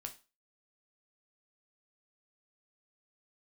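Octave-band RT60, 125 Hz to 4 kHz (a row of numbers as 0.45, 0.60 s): 0.25, 0.30, 0.30, 0.30, 0.30, 0.30 s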